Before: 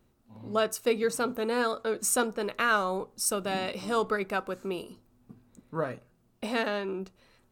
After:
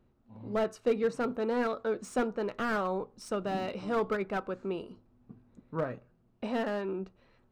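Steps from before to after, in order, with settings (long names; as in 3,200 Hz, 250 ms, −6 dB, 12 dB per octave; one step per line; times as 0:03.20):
head-to-tape spacing loss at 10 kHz 24 dB
slew-rate limiting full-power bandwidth 44 Hz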